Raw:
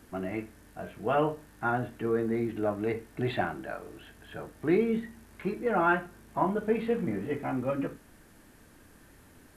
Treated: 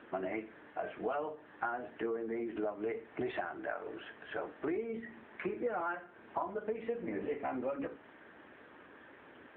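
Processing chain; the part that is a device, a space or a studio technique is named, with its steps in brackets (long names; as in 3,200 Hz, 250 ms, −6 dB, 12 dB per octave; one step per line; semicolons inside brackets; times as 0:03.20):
voicemail (band-pass filter 380–2,800 Hz; downward compressor 10 to 1, threshold −40 dBFS, peak gain reduction 18.5 dB; level +7 dB; AMR narrowband 7.95 kbit/s 8,000 Hz)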